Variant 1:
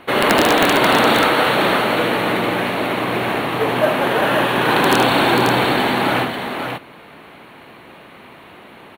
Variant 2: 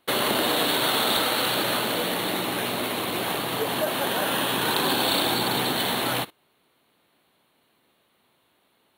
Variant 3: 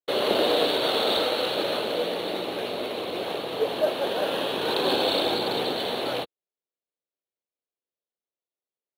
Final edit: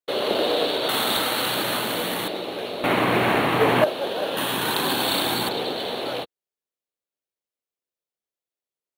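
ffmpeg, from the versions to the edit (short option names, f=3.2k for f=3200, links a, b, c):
-filter_complex "[1:a]asplit=2[a][b];[2:a]asplit=4[c][d][e][f];[c]atrim=end=0.892[g];[a]atrim=start=0.888:end=2.282[h];[d]atrim=start=2.278:end=2.842[i];[0:a]atrim=start=2.838:end=3.842[j];[e]atrim=start=3.838:end=4.372[k];[b]atrim=start=4.368:end=5.492[l];[f]atrim=start=5.488[m];[g][h]acrossfade=d=0.004:c1=hsin:c2=hsin[n];[n][i]acrossfade=d=0.004:c1=hsin:c2=hsin[o];[o][j]acrossfade=d=0.004:c1=hsin:c2=hsin[p];[p][k]acrossfade=d=0.004:c1=hsin:c2=hsin[q];[q][l]acrossfade=d=0.004:c1=hsin:c2=hsin[r];[r][m]acrossfade=d=0.004:c1=hsin:c2=hsin"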